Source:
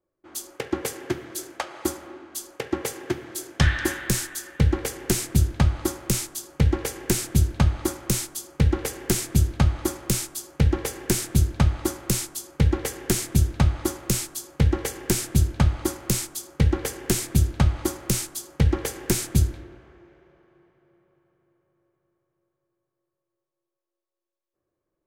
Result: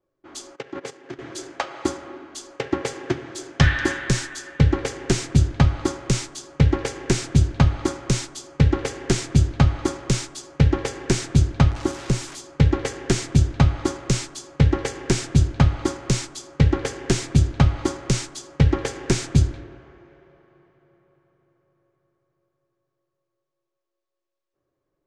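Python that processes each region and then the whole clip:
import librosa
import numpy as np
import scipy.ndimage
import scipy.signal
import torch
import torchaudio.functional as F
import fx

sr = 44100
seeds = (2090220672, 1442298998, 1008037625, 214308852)

y = fx.chain(x, sr, fx.level_steps(step_db=17),
    fx.highpass(hz=140.0, slope=12),
    fx.high_shelf(hz=9700.0, db=-5.0), at=(0.55, 1.19))
y = fx.chain(y, sr, fx.crossing_spikes(level_db=-18.0),
    fx.high_shelf(hz=2500.0, db=-11.0), at=(11.71, 12.4))
y = scipy.signal.sosfilt(scipy.signal.butter(4, 7400.0, 'lowpass', fs=sr, output='sos'), y)
y = fx.high_shelf(y, sr, hz=5300.0, db=-5.0)
y = y + 0.3 * np.pad(y, (int(7.3 * sr / 1000.0), 0))[:len(y)]
y = F.gain(torch.from_numpy(y), 3.5).numpy()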